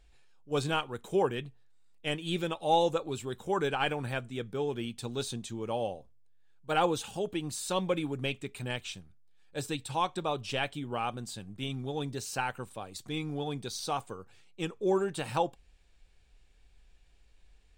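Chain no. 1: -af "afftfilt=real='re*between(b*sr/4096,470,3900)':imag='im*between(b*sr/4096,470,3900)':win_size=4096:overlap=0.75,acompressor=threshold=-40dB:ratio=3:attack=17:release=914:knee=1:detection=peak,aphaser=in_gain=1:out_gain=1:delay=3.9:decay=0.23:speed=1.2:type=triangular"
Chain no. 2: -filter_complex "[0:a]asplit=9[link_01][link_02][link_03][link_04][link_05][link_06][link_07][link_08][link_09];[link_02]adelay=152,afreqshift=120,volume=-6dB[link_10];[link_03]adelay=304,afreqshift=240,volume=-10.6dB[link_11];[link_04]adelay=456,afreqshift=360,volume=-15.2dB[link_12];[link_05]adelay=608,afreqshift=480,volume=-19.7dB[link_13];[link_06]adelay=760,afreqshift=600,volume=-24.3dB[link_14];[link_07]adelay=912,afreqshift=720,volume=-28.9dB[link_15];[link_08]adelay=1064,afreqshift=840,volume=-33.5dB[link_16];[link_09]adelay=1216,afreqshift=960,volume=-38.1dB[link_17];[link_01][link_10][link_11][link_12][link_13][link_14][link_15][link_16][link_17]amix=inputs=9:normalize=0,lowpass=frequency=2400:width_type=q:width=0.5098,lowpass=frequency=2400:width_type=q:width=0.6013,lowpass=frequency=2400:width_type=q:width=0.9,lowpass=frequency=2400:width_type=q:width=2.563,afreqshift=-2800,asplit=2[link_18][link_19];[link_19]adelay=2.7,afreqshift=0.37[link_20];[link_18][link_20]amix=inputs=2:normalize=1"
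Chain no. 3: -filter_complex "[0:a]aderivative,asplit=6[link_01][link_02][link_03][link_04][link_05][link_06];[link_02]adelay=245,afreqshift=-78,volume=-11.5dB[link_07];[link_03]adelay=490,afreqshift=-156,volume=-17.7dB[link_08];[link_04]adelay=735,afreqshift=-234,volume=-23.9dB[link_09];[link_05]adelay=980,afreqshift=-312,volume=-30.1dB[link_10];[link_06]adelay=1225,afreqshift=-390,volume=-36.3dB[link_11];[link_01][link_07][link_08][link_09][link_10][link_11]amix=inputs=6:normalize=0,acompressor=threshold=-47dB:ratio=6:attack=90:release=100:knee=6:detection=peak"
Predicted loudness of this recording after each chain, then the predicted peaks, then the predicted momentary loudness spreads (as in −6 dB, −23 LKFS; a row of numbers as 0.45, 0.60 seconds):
−44.0, −32.5, −47.0 LKFS; −24.5, −16.5, −28.5 dBFS; 8, 14, 12 LU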